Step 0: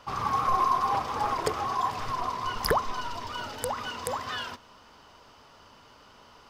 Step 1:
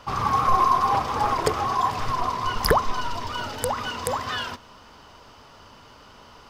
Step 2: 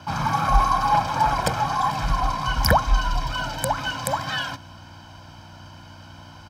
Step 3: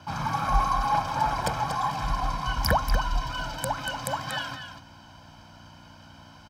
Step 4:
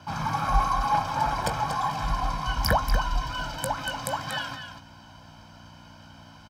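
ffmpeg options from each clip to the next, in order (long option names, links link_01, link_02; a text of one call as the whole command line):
ffmpeg -i in.wav -af "lowshelf=frequency=170:gain=4.5,volume=5dB" out.wav
ffmpeg -i in.wav -af "aecho=1:1:1.3:0.81,aeval=exprs='val(0)+0.00562*(sin(2*PI*60*n/s)+sin(2*PI*2*60*n/s)/2+sin(2*PI*3*60*n/s)/3+sin(2*PI*4*60*n/s)/4+sin(2*PI*5*60*n/s)/5)':channel_layout=same,afreqshift=35" out.wav
ffmpeg -i in.wav -af "aecho=1:1:237:0.376,volume=-5.5dB" out.wav
ffmpeg -i in.wav -filter_complex "[0:a]asplit=2[link_01][link_02];[link_02]adelay=19,volume=-11.5dB[link_03];[link_01][link_03]amix=inputs=2:normalize=0" out.wav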